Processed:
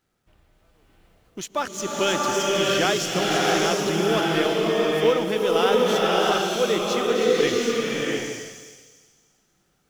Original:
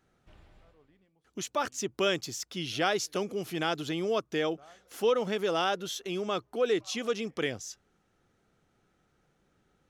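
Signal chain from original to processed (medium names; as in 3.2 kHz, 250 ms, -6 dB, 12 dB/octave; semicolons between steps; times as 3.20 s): companding laws mixed up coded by A; feedback echo behind a high-pass 315 ms, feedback 32%, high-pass 5.3 kHz, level -5.5 dB; swelling reverb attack 680 ms, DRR -4.5 dB; trim +5 dB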